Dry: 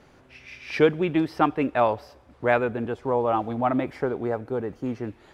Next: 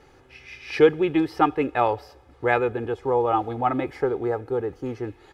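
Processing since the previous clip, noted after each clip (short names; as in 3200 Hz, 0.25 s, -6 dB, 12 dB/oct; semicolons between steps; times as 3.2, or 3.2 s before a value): comb 2.4 ms, depth 57%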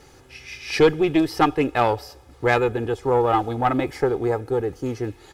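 tone controls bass +3 dB, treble +12 dB; tube stage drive 12 dB, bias 0.45; gain +4 dB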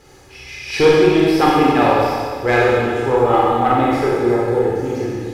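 Schroeder reverb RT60 1.9 s, combs from 30 ms, DRR -5.5 dB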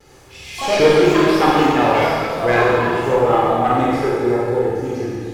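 vibrato 0.72 Hz 27 cents; echoes that change speed 83 ms, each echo +5 st, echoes 3, each echo -6 dB; gain -1.5 dB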